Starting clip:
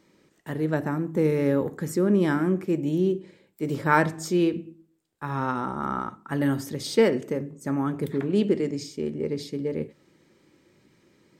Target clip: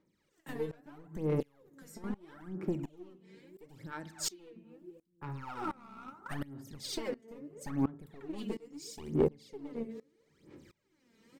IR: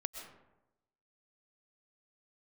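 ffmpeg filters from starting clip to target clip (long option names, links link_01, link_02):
-filter_complex "[0:a]asplit=2[link_01][link_02];[link_02]adelay=252,lowpass=frequency=1100:poles=1,volume=-23.5dB,asplit=2[link_03][link_04];[link_04]adelay=252,lowpass=frequency=1100:poles=1,volume=0.44,asplit=2[link_05][link_06];[link_06]adelay=252,lowpass=frequency=1100:poles=1,volume=0.44[link_07];[link_03][link_05][link_07]amix=inputs=3:normalize=0[link_08];[link_01][link_08]amix=inputs=2:normalize=0,acompressor=threshold=-31dB:ratio=16,asplit=3[link_09][link_10][link_11];[link_09]afade=type=out:start_time=3.84:duration=0.02[link_12];[link_10]equalizer=frequency=125:width_type=o:width=1:gain=-11,equalizer=frequency=500:width_type=o:width=1:gain=-6,equalizer=frequency=1000:width_type=o:width=1:gain=-6,equalizer=frequency=4000:width_type=o:width=1:gain=7,afade=type=in:start_time=3.84:duration=0.02,afade=type=out:start_time=4.38:duration=0.02[link_13];[link_11]afade=type=in:start_time=4.38:duration=0.02[link_14];[link_12][link_13][link_14]amix=inputs=3:normalize=0,aeval=exprs='clip(val(0),-1,0.0251)':channel_layout=same,aphaser=in_gain=1:out_gain=1:delay=4.5:decay=0.78:speed=0.76:type=sinusoidal,bandreject=frequency=111.1:width_type=h:width=4,bandreject=frequency=222.2:width_type=h:width=4,bandreject=frequency=333.3:width_type=h:width=4,bandreject=frequency=444.4:width_type=h:width=4,bandreject=frequency=555.5:width_type=h:width=4,bandreject=frequency=666.6:width_type=h:width=4,bandreject=frequency=777.7:width_type=h:width=4,bandreject=frequency=888.8:width_type=h:width=4,bandreject=frequency=999.9:width_type=h:width=4,bandreject=frequency=1111:width_type=h:width=4,bandreject=frequency=1222.1:width_type=h:width=4,bandreject=frequency=1333.2:width_type=h:width=4,bandreject=frequency=1444.3:width_type=h:width=4,bandreject=frequency=1555.4:width_type=h:width=4,bandreject=frequency=1666.5:width_type=h:width=4,bandreject=frequency=1777.6:width_type=h:width=4,bandreject=frequency=1888.7:width_type=h:width=4,bandreject=frequency=1999.8:width_type=h:width=4,bandreject=frequency=2110.9:width_type=h:width=4,asettb=1/sr,asplit=3[link_15][link_16][link_17];[link_15]atrim=end=1.404[link_18];[link_16]atrim=start=1.4:end=2.04,asetpts=PTS-STARTPTS,afade=type=in:duration=0.004:curve=qsin,afade=type=out:start_time=0.636:duration=0.004:curve=qsin,acrossover=split=350|2400[link_19][link_20][link_21];[link_19]acompressor=threshold=-45dB:ratio=4[link_22];[link_20]acompressor=threshold=-50dB:ratio=4[link_23];[link_21]acompressor=threshold=-48dB:ratio=4[link_24];[link_22][link_23][link_24]amix=inputs=3:normalize=0[link_25];[link_17]atrim=start=2.036[link_26];[link_18][link_25]acrossfade=duration=0.004:curve1=hsin:curve2=qsin[link_27];[link_27][link_26]acrossfade=duration=0.004:curve1=qsin:curve2=hsin,asettb=1/sr,asplit=3[link_28][link_29][link_30];[link_28]atrim=end=8.384[link_31];[link_29]atrim=start=8.38:end=9.29,asetpts=PTS-STARTPTS,afade=type=in:duration=0.004:curve=qsin,afade=type=out:start_time=0.906:duration=0.004:curve=qsin,highshelf=frequency=4800:gain=11[link_32];[link_30]atrim=start=9.286[link_33];[link_31][link_32]acrossfade=duration=0.004:curve1=hsin:curve2=qsin[link_34];[link_34][link_33]acrossfade=duration=0.004:curve1=qsin:curve2=hsin,aeval=exprs='val(0)*pow(10,-24*if(lt(mod(-1.4*n/s,1),2*abs(-1.4)/1000),1-mod(-1.4*n/s,1)/(2*abs(-1.4)/1000),(mod(-1.4*n/s,1)-2*abs(-1.4)/1000)/(1-2*abs(-1.4)/1000))/20)':channel_layout=same"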